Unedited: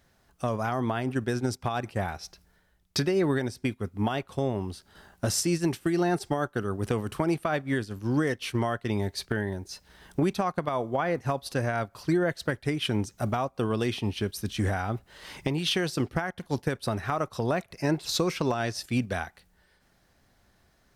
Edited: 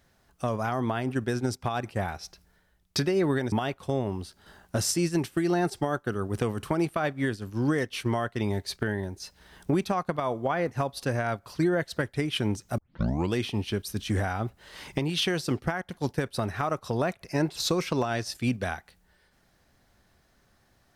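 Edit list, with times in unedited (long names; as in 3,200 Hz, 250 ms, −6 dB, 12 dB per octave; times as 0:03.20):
0:03.52–0:04.01: remove
0:13.27: tape start 0.56 s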